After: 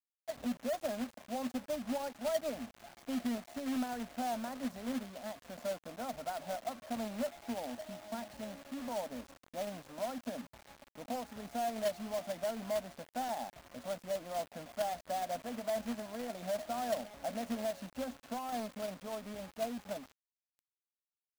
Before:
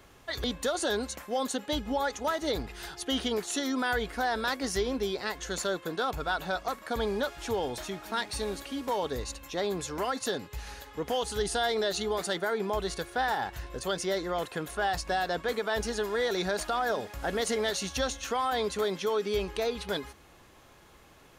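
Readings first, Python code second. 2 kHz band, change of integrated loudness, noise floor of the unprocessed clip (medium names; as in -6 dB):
-15.5 dB, -8.5 dB, -56 dBFS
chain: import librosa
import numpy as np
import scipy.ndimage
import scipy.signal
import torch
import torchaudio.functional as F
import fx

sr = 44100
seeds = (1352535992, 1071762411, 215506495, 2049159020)

y = fx.double_bandpass(x, sr, hz=390.0, octaves=1.4)
y = fx.quant_companded(y, sr, bits=4)
y = y * librosa.db_to_amplitude(1.0)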